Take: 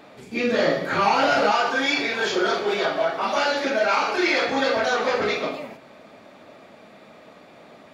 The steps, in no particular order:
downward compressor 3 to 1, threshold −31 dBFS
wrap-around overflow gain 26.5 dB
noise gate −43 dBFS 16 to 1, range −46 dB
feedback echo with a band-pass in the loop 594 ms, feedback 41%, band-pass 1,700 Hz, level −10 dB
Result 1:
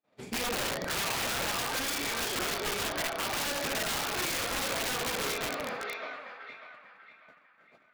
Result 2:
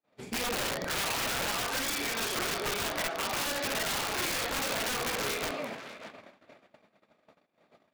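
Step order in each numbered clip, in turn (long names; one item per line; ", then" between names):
noise gate, then feedback echo with a band-pass in the loop, then downward compressor, then wrap-around overflow
downward compressor, then wrap-around overflow, then feedback echo with a band-pass in the loop, then noise gate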